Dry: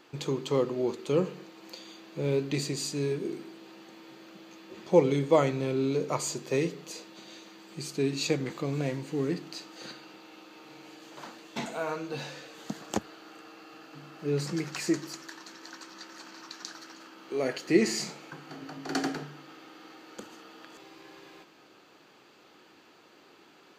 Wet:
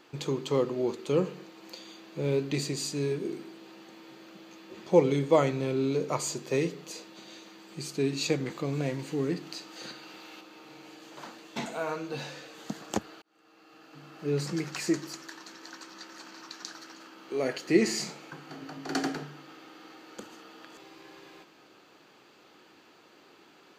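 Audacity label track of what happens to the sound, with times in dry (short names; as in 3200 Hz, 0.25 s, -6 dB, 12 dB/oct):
8.990000	10.410000	mismatched tape noise reduction encoder only
13.220000	14.240000	fade in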